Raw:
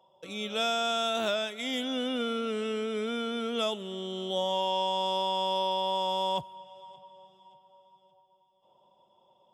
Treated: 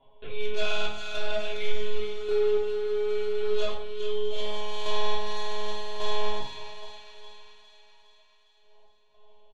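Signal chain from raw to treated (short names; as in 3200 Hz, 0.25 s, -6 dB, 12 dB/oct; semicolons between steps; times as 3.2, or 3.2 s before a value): switching dead time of 0.071 ms; monotone LPC vocoder at 8 kHz 210 Hz; comb 7.4 ms, depth 90%; hard clip -26 dBFS, distortion -11 dB; random-step tremolo, depth 75%; shoebox room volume 570 m³, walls furnished, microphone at 3.2 m; treble ducked by the level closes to 2400 Hz, closed at -8 dBFS; thin delay 0.409 s, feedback 58%, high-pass 1500 Hz, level -7 dB; gain -2 dB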